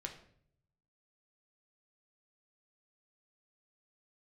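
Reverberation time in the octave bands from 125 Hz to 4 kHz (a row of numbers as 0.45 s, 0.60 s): 1.3 s, 0.85 s, 0.75 s, 0.55 s, 0.55 s, 0.45 s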